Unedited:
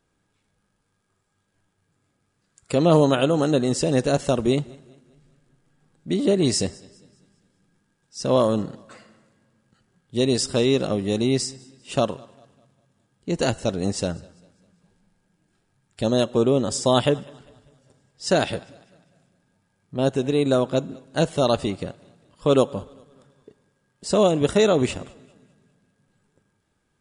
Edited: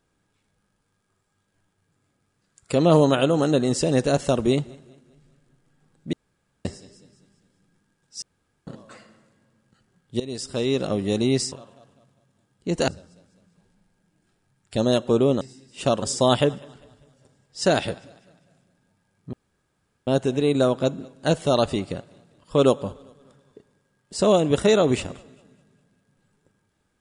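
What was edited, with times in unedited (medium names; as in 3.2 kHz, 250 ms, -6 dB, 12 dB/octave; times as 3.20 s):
6.13–6.65 s: room tone
8.22–8.67 s: room tone
10.20–11.01 s: fade in, from -17 dB
11.52–12.13 s: move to 16.67 s
13.49–14.14 s: delete
19.98 s: insert room tone 0.74 s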